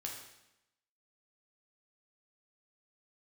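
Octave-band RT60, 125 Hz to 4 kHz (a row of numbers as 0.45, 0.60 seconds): 0.90, 0.95, 0.90, 0.90, 0.90, 0.85 seconds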